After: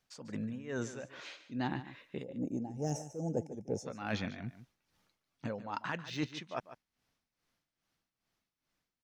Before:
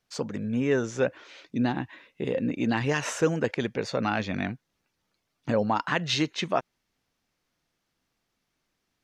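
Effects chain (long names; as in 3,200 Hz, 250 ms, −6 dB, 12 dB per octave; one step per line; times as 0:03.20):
source passing by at 0:03.35, 11 m/s, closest 15 metres
gain on a spectral selection 0:02.24–0:03.86, 890–5,100 Hz −26 dB
de-essing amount 100%
parametric band 410 Hz −3 dB 0.77 octaves
reversed playback
downward compressor 4 to 1, threshold −40 dBFS, peak gain reduction 16.5 dB
reversed playback
amplitude tremolo 2.4 Hz, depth 79%
on a send: single-tap delay 146 ms −13.5 dB
on the sum: level +7.5 dB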